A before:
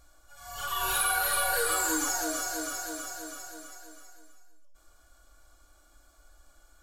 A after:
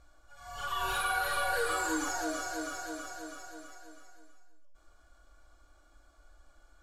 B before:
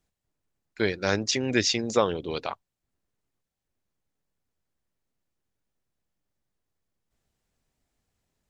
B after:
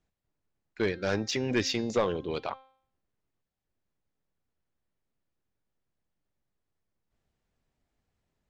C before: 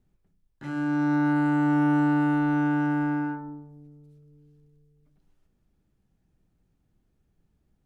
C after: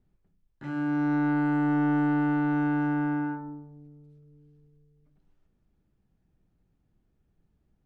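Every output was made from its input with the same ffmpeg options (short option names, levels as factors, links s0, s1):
-af "aemphasis=mode=reproduction:type=50fm,bandreject=f=263.6:t=h:w=4,bandreject=f=527.2:t=h:w=4,bandreject=f=790.8:t=h:w=4,bandreject=f=1054.4:t=h:w=4,bandreject=f=1318:t=h:w=4,bandreject=f=1581.6:t=h:w=4,bandreject=f=1845.2:t=h:w=4,bandreject=f=2108.8:t=h:w=4,bandreject=f=2372.4:t=h:w=4,bandreject=f=2636:t=h:w=4,bandreject=f=2899.6:t=h:w=4,bandreject=f=3163.2:t=h:w=4,bandreject=f=3426.8:t=h:w=4,bandreject=f=3690.4:t=h:w=4,bandreject=f=3954:t=h:w=4,bandreject=f=4217.6:t=h:w=4,bandreject=f=4481.2:t=h:w=4,bandreject=f=4744.8:t=h:w=4,bandreject=f=5008.4:t=h:w=4,bandreject=f=5272:t=h:w=4,bandreject=f=5535.6:t=h:w=4,bandreject=f=5799.2:t=h:w=4,bandreject=f=6062.8:t=h:w=4,bandreject=f=6326.4:t=h:w=4,bandreject=f=6590:t=h:w=4,bandreject=f=6853.6:t=h:w=4,asoftclip=type=tanh:threshold=0.141,volume=0.891"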